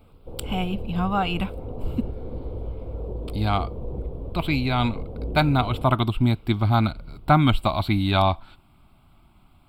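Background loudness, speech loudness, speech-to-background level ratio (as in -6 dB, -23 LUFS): -35.0 LUFS, -24.0 LUFS, 11.0 dB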